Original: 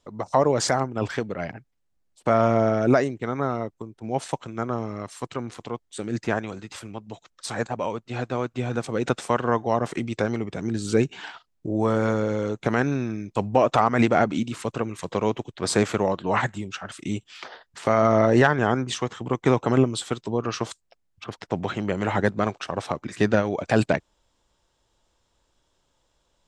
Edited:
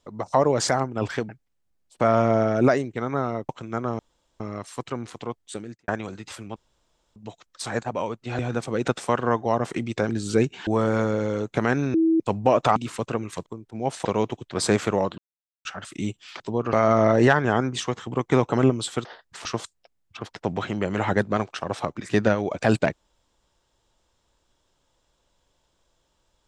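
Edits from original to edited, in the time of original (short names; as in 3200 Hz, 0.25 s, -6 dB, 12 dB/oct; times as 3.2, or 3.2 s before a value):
1.29–1.55 cut
3.75–4.34 move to 15.12
4.84 insert room tone 0.41 s
5.97–6.32 fade out quadratic
7 insert room tone 0.60 s
8.23–8.6 cut
10.3–10.68 cut
11.26–11.76 cut
13.03–13.29 bleep 325 Hz -16 dBFS
13.85–14.42 cut
16.25–16.72 mute
17.47–17.87 swap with 20.19–20.52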